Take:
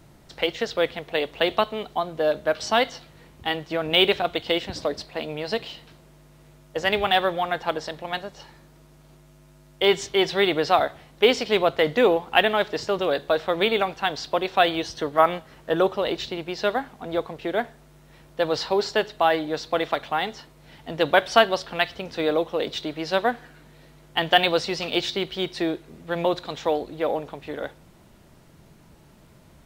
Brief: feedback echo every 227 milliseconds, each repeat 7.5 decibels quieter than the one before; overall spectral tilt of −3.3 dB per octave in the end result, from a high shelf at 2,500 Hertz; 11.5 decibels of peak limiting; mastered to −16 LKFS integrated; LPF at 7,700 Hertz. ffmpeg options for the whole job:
ffmpeg -i in.wav -af "lowpass=7700,highshelf=frequency=2500:gain=-9,alimiter=limit=-15.5dB:level=0:latency=1,aecho=1:1:227|454|681|908|1135:0.422|0.177|0.0744|0.0312|0.0131,volume=12dB" out.wav

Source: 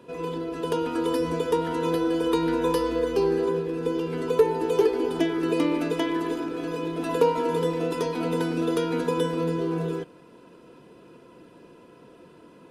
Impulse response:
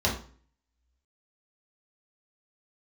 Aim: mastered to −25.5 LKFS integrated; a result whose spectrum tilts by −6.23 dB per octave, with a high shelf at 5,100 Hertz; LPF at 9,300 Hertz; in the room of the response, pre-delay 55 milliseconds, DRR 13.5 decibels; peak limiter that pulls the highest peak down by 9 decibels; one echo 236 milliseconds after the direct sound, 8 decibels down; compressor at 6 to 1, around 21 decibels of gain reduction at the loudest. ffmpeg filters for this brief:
-filter_complex "[0:a]lowpass=9300,highshelf=frequency=5100:gain=-8,acompressor=threshold=-39dB:ratio=6,alimiter=level_in=11.5dB:limit=-24dB:level=0:latency=1,volume=-11.5dB,aecho=1:1:236:0.398,asplit=2[link_01][link_02];[1:a]atrim=start_sample=2205,adelay=55[link_03];[link_02][link_03]afir=irnorm=-1:irlink=0,volume=-25.5dB[link_04];[link_01][link_04]amix=inputs=2:normalize=0,volume=18dB"

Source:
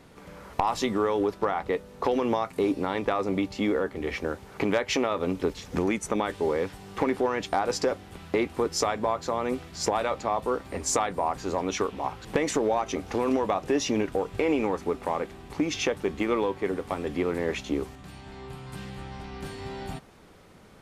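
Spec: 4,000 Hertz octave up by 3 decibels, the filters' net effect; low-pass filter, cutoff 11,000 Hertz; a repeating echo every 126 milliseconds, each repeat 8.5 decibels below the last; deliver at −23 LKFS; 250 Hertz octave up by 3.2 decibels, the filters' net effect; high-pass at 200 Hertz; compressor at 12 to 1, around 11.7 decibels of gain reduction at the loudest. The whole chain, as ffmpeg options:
ffmpeg -i in.wav -af "highpass=200,lowpass=11000,equalizer=frequency=250:width_type=o:gain=5.5,equalizer=frequency=4000:width_type=o:gain=4,acompressor=threshold=-30dB:ratio=12,aecho=1:1:126|252|378|504:0.376|0.143|0.0543|0.0206,volume=12dB" out.wav

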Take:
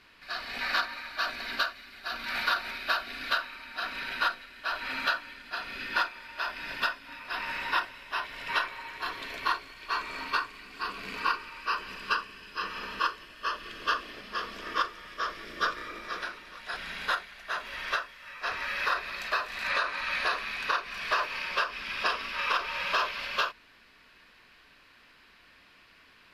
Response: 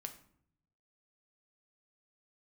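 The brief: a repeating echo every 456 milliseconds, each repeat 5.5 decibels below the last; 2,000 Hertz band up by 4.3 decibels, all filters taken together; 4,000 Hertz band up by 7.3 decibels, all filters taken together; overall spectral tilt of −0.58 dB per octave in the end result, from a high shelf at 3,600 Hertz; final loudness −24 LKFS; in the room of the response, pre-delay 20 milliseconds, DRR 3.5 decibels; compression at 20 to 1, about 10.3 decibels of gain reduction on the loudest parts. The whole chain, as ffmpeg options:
-filter_complex "[0:a]equalizer=frequency=2000:width_type=o:gain=3.5,highshelf=frequency=3600:gain=4.5,equalizer=frequency=4000:width_type=o:gain=5,acompressor=threshold=-29dB:ratio=20,aecho=1:1:456|912|1368|1824|2280|2736|3192:0.531|0.281|0.149|0.079|0.0419|0.0222|0.0118,asplit=2[link_01][link_02];[1:a]atrim=start_sample=2205,adelay=20[link_03];[link_02][link_03]afir=irnorm=-1:irlink=0,volume=0dB[link_04];[link_01][link_04]amix=inputs=2:normalize=0,volume=6dB"

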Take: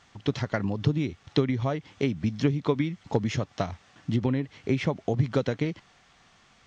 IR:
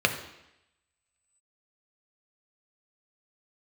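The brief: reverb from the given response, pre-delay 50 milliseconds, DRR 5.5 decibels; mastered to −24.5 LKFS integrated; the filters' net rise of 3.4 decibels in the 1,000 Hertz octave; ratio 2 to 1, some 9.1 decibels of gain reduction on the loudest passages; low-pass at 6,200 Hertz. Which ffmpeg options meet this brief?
-filter_complex "[0:a]lowpass=6200,equalizer=frequency=1000:width_type=o:gain=4.5,acompressor=threshold=-35dB:ratio=2,asplit=2[link_01][link_02];[1:a]atrim=start_sample=2205,adelay=50[link_03];[link_02][link_03]afir=irnorm=-1:irlink=0,volume=-20dB[link_04];[link_01][link_04]amix=inputs=2:normalize=0,volume=10.5dB"

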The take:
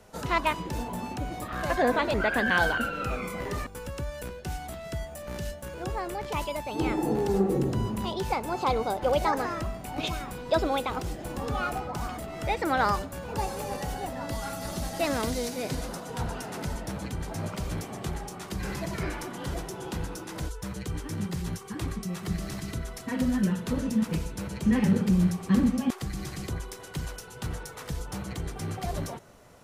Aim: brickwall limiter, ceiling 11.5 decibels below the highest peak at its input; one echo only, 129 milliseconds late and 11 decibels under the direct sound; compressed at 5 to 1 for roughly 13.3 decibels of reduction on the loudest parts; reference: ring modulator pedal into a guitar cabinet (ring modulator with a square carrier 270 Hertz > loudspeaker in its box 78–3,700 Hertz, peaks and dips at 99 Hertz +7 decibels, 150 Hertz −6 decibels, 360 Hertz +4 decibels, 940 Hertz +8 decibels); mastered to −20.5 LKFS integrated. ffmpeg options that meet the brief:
ffmpeg -i in.wav -af "acompressor=threshold=-34dB:ratio=5,alimiter=level_in=10.5dB:limit=-24dB:level=0:latency=1,volume=-10.5dB,aecho=1:1:129:0.282,aeval=exprs='val(0)*sgn(sin(2*PI*270*n/s))':channel_layout=same,highpass=78,equalizer=frequency=99:width_type=q:width=4:gain=7,equalizer=frequency=150:width_type=q:width=4:gain=-6,equalizer=frequency=360:width_type=q:width=4:gain=4,equalizer=frequency=940:width_type=q:width=4:gain=8,lowpass=frequency=3700:width=0.5412,lowpass=frequency=3700:width=1.3066,volume=20dB" out.wav

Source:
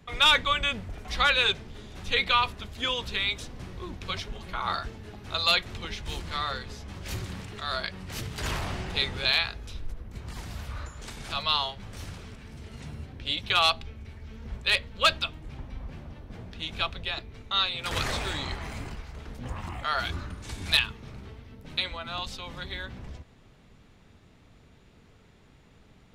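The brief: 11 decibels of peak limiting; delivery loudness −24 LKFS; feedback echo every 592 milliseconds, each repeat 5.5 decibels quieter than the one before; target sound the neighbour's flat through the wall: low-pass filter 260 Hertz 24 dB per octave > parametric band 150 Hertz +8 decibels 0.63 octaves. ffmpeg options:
ffmpeg -i in.wav -af "alimiter=limit=-22.5dB:level=0:latency=1,lowpass=frequency=260:width=0.5412,lowpass=frequency=260:width=1.3066,equalizer=frequency=150:width_type=o:width=0.63:gain=8,aecho=1:1:592|1184|1776|2368|2960|3552|4144:0.531|0.281|0.149|0.079|0.0419|0.0222|0.0118,volume=15.5dB" out.wav

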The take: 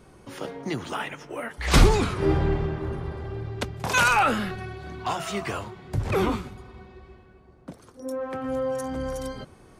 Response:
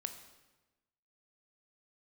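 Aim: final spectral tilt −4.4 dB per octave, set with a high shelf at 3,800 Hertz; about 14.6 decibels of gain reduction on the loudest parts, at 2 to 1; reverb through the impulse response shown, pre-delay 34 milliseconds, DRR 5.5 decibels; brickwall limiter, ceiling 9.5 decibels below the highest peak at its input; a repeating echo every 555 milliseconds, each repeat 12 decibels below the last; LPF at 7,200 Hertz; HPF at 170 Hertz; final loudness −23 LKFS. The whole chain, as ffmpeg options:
-filter_complex "[0:a]highpass=170,lowpass=7200,highshelf=frequency=3800:gain=-3.5,acompressor=threshold=-45dB:ratio=2,alimiter=level_in=8.5dB:limit=-24dB:level=0:latency=1,volume=-8.5dB,aecho=1:1:555|1110|1665:0.251|0.0628|0.0157,asplit=2[link_01][link_02];[1:a]atrim=start_sample=2205,adelay=34[link_03];[link_02][link_03]afir=irnorm=-1:irlink=0,volume=-4dB[link_04];[link_01][link_04]amix=inputs=2:normalize=0,volume=18dB"

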